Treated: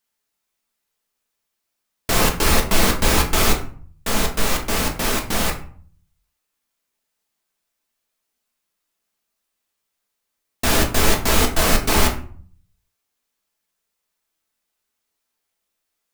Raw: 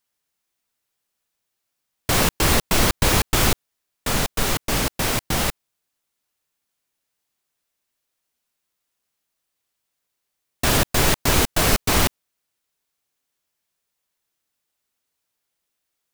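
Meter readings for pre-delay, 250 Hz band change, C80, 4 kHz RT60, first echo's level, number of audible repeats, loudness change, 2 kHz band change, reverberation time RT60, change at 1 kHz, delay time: 3 ms, +1.5 dB, 14.0 dB, 0.30 s, none, none, +1.0 dB, +1.0 dB, 0.50 s, +2.0 dB, none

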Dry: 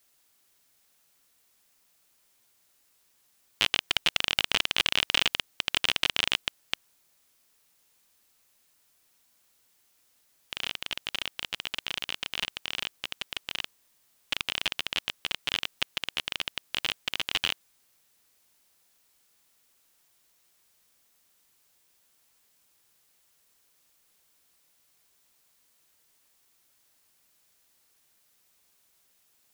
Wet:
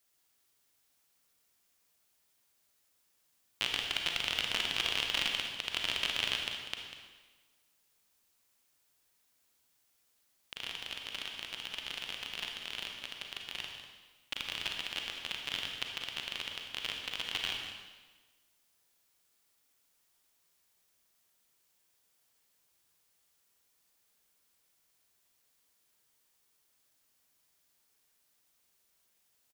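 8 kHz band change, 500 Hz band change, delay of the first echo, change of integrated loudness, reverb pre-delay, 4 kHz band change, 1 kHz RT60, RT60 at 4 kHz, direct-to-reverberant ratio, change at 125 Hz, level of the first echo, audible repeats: -6.0 dB, -6.0 dB, 0.195 s, -6.0 dB, 33 ms, -6.0 dB, 1.3 s, 1.2 s, 1.5 dB, -5.5 dB, -12.0 dB, 1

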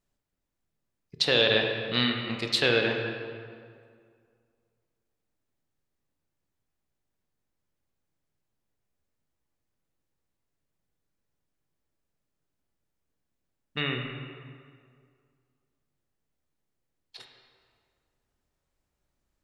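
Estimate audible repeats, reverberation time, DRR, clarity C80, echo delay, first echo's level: none, 2.1 s, 2.0 dB, 5.0 dB, none, none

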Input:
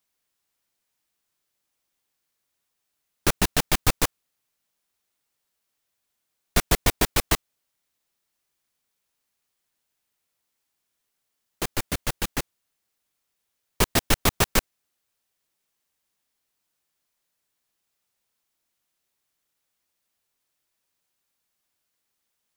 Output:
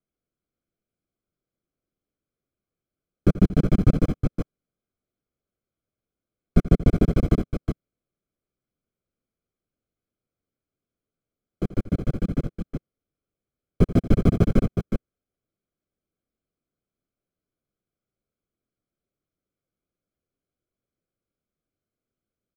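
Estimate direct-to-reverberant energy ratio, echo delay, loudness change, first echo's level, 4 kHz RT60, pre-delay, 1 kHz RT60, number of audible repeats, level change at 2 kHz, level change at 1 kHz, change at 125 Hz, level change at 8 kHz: none, 84 ms, +1.0 dB, -16.0 dB, none, none, none, 2, -13.5 dB, -9.5 dB, +9.5 dB, under -20 dB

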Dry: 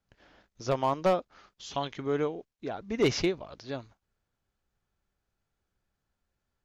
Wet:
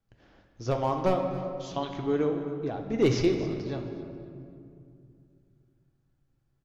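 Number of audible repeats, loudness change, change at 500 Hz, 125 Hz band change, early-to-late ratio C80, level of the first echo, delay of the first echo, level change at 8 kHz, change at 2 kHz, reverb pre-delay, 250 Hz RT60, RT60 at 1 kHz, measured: 2, +2.0 dB, +2.0 dB, +6.0 dB, 6.5 dB, -16.0 dB, 0.269 s, n/a, -2.0 dB, 3 ms, 3.4 s, 2.3 s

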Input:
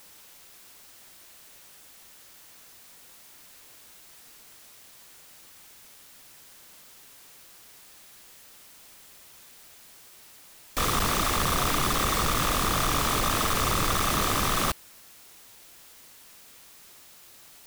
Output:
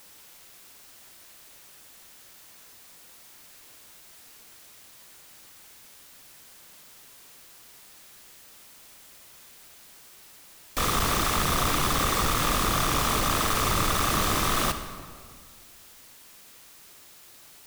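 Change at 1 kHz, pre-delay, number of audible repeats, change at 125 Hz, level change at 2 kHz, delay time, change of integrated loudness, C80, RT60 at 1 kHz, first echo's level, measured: +0.5 dB, 36 ms, none, +1.0 dB, +0.5 dB, none, +0.5 dB, 10.5 dB, 1.7 s, none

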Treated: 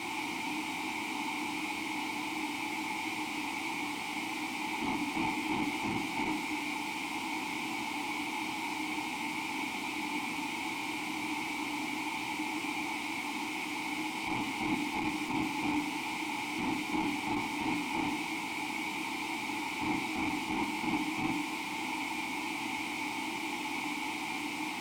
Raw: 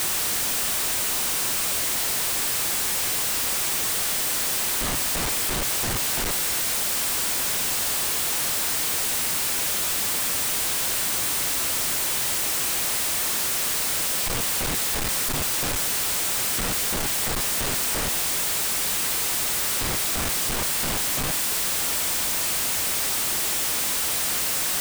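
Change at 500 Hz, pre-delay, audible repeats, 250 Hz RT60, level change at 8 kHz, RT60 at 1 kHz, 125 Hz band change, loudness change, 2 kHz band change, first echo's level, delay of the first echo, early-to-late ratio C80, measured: -9.0 dB, 5 ms, none, 0.70 s, -23.5 dB, 0.50 s, -10.5 dB, -12.5 dB, -4.5 dB, none, none, 14.0 dB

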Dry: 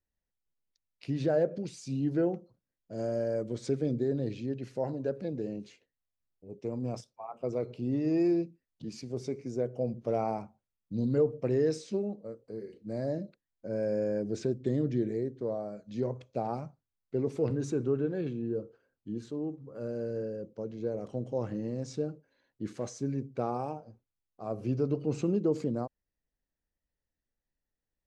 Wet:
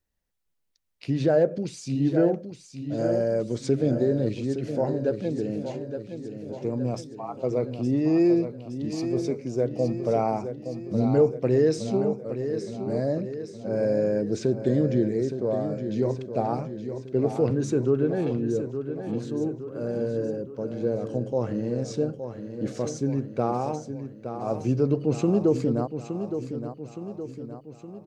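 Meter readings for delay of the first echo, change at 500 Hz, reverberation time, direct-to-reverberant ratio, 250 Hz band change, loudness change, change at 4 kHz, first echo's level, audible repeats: 0.867 s, +7.0 dB, none, none, +7.0 dB, +6.5 dB, +7.0 dB, -9.0 dB, 6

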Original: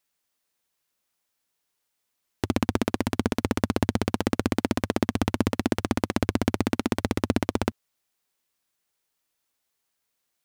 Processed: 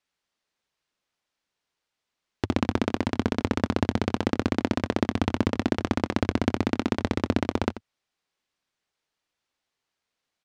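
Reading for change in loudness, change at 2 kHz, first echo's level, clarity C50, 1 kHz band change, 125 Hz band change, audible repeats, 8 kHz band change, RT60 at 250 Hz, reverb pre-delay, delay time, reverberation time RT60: 0.0 dB, 0.0 dB, -14.0 dB, none, 0.0 dB, 0.0 dB, 1, -7.0 dB, none, none, 87 ms, none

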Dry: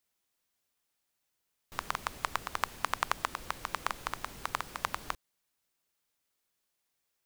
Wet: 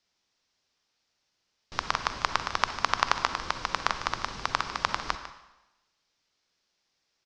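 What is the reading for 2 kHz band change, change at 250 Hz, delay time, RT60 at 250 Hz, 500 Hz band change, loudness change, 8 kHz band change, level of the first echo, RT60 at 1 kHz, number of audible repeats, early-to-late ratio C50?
+6.5 dB, +6.5 dB, 0.15 s, 0.95 s, +6.5 dB, +7.0 dB, +3.5 dB, -13.5 dB, 1.0 s, 1, 8.5 dB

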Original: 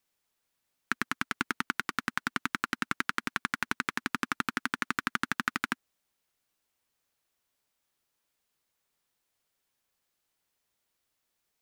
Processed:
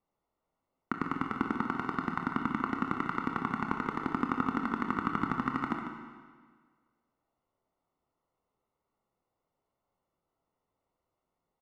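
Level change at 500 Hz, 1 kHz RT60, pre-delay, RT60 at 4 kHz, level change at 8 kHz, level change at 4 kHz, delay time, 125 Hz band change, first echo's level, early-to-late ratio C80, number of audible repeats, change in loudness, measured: +6.5 dB, 1.6 s, 24 ms, 1.5 s, under -20 dB, -13.5 dB, 0.147 s, +6.5 dB, -10.0 dB, 4.5 dB, 1, -0.5 dB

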